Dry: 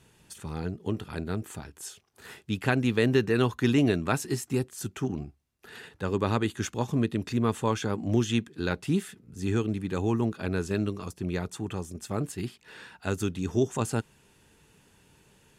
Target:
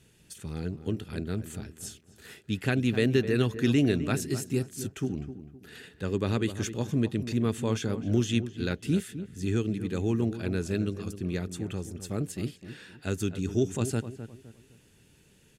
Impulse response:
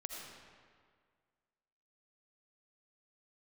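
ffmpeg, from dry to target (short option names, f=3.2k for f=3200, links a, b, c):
-filter_complex "[0:a]equalizer=f=960:t=o:w=1:g=-11,asplit=2[a][b];[b]adelay=257,lowpass=f=1.5k:p=1,volume=-11dB,asplit=2[c][d];[d]adelay=257,lowpass=f=1.5k:p=1,volume=0.34,asplit=2[e][f];[f]adelay=257,lowpass=f=1.5k:p=1,volume=0.34,asplit=2[g][h];[h]adelay=257,lowpass=f=1.5k:p=1,volume=0.34[i];[c][e][g][i]amix=inputs=4:normalize=0[j];[a][j]amix=inputs=2:normalize=0"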